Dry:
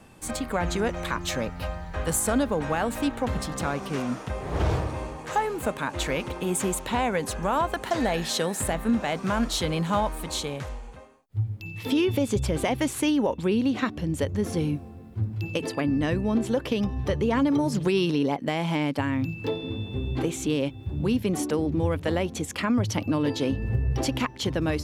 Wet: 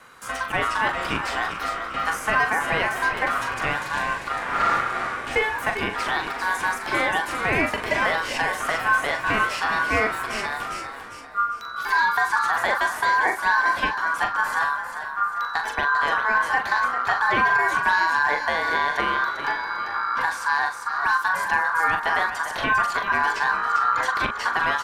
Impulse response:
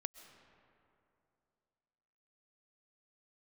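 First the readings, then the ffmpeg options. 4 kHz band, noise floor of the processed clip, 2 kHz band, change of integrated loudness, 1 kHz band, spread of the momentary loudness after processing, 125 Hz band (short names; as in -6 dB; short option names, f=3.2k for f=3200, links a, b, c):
+2.0 dB, -34 dBFS, +15.0 dB, +4.5 dB, +10.5 dB, 6 LU, -12.5 dB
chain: -filter_complex "[0:a]asplit=5[a][b][c][d][e];[b]adelay=397,afreqshift=56,volume=-10.5dB[f];[c]adelay=794,afreqshift=112,volume=-18.9dB[g];[d]adelay=1191,afreqshift=168,volume=-27.3dB[h];[e]adelay=1588,afreqshift=224,volume=-35.7dB[i];[a][f][g][h][i]amix=inputs=5:normalize=0,aeval=exprs='val(0)*sin(2*PI*1300*n/s)':c=same,acrossover=split=3400[j][k];[k]acompressor=threshold=-42dB:ratio=4:attack=1:release=60[l];[j][l]amix=inputs=2:normalize=0,asplit=2[m][n];[1:a]atrim=start_sample=2205,asetrate=22932,aresample=44100,adelay=41[o];[n][o]afir=irnorm=-1:irlink=0,volume=-8dB[p];[m][p]amix=inputs=2:normalize=0,volume=5dB"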